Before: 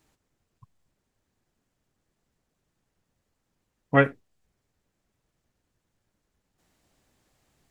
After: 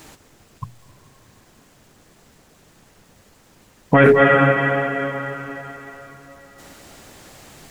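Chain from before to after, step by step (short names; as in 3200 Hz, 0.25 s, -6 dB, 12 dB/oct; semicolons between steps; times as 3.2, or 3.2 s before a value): low shelf 100 Hz -6.5 dB; notches 60/120/180/240/300/360/420 Hz; on a send at -15 dB: reverb RT60 3.9 s, pre-delay 0.192 s; on the sum: maximiser +27.5 dB; gain -1 dB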